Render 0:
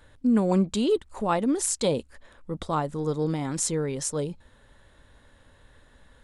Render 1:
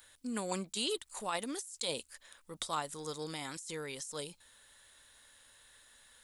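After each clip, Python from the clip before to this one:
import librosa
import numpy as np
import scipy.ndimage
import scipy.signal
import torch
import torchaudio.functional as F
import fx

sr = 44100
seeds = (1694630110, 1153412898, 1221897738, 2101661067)

y = F.preemphasis(torch.from_numpy(x), 0.97).numpy()
y = fx.over_compress(y, sr, threshold_db=-42.0, ratio=-1.0)
y = y * librosa.db_to_amplitude(3.5)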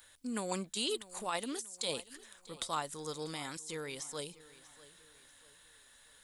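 y = fx.echo_feedback(x, sr, ms=641, feedback_pct=41, wet_db=-19)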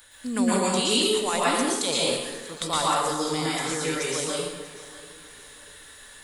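y = fx.rev_plate(x, sr, seeds[0], rt60_s=1.1, hf_ratio=0.75, predelay_ms=105, drr_db=-6.5)
y = y * librosa.db_to_amplitude(7.5)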